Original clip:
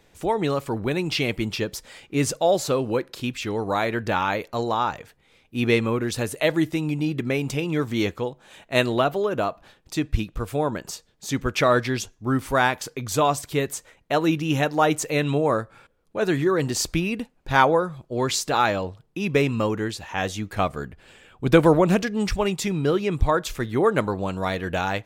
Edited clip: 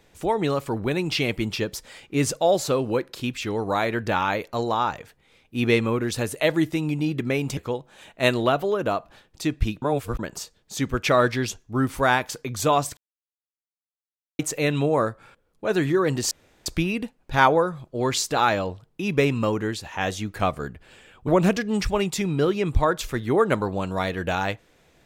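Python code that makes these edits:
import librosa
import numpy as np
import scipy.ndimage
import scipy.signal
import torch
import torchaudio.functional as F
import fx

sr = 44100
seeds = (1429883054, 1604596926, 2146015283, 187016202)

y = fx.edit(x, sr, fx.cut(start_s=7.57, length_s=0.52),
    fx.reverse_span(start_s=10.34, length_s=0.37),
    fx.silence(start_s=13.49, length_s=1.42),
    fx.insert_room_tone(at_s=16.83, length_s=0.35),
    fx.cut(start_s=21.45, length_s=0.29), tone=tone)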